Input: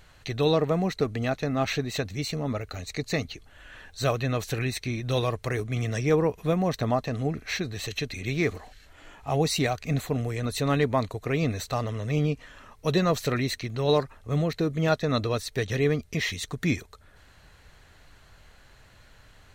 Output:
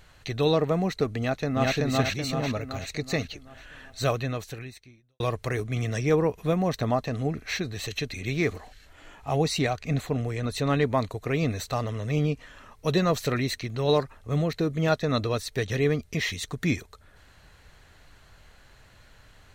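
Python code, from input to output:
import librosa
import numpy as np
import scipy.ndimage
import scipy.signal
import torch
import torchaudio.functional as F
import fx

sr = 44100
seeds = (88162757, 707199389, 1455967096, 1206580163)

y = fx.echo_throw(x, sr, start_s=1.18, length_s=0.57, ms=380, feedback_pct=50, wet_db=0.0)
y = fx.high_shelf(y, sr, hz=10000.0, db=-10.0, at=(9.42, 10.85))
y = fx.edit(y, sr, fx.fade_out_span(start_s=4.13, length_s=1.07, curve='qua'), tone=tone)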